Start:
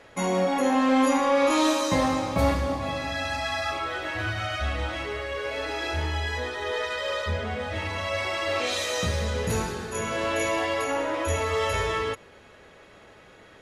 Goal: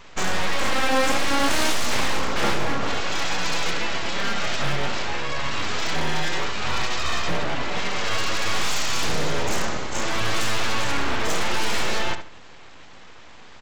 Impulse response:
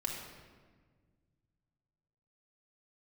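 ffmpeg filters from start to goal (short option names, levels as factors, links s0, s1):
-filter_complex "[0:a]bandreject=f=60:t=h:w=6,bandreject=f=120:t=h:w=6,bandreject=f=180:t=h:w=6,aresample=16000,aeval=exprs='abs(val(0))':c=same,aresample=44100,asplit=2[s0][s1];[s1]adelay=72,lowpass=f=3400:p=1,volume=0.355,asplit=2[s2][s3];[s3]adelay=72,lowpass=f=3400:p=1,volume=0.24,asplit=2[s4][s5];[s5]adelay=72,lowpass=f=3400:p=1,volume=0.24[s6];[s0][s2][s4][s6]amix=inputs=4:normalize=0,aeval=exprs='0.0944*(abs(mod(val(0)/0.0944+3,4)-2)-1)':c=same,volume=2.24"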